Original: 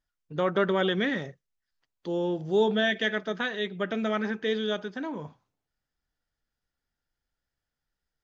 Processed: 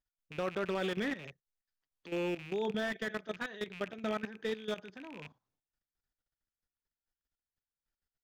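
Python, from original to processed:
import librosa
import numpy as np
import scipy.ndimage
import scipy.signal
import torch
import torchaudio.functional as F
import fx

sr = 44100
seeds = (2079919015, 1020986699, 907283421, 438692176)

y = fx.rattle_buzz(x, sr, strikes_db=-41.0, level_db=-24.0)
y = fx.level_steps(y, sr, step_db=14)
y = fx.slew_limit(y, sr, full_power_hz=62.0)
y = F.gain(torch.from_numpy(y), -5.0).numpy()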